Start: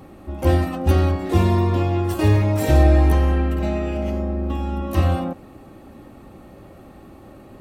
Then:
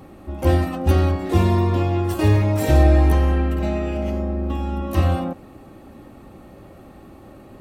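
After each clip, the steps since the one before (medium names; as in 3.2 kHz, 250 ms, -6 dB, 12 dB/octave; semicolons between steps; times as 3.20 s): no audible change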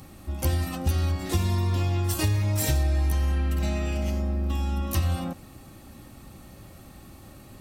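FFT filter 130 Hz 0 dB, 420 Hz -10 dB, 2.8 kHz +1 dB, 5.4 kHz +9 dB; compression 6:1, threshold -21 dBFS, peak gain reduction 10 dB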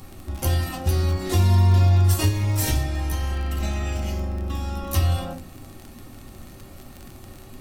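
on a send at -2.5 dB: reverberation RT60 0.35 s, pre-delay 3 ms; on the sum: crackle 26 per s -31 dBFS; trim +1.5 dB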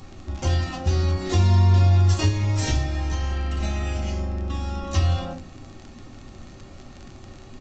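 resampled via 16 kHz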